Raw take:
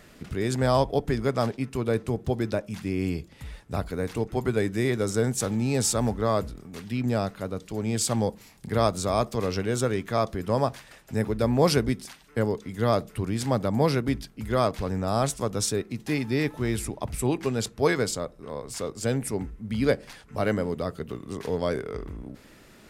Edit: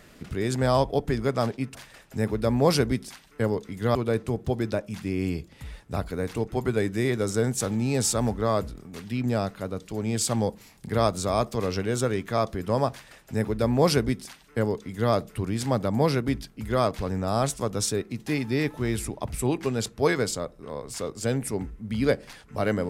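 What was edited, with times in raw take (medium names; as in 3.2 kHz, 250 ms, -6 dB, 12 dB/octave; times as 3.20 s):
10.72–12.92 s: copy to 1.75 s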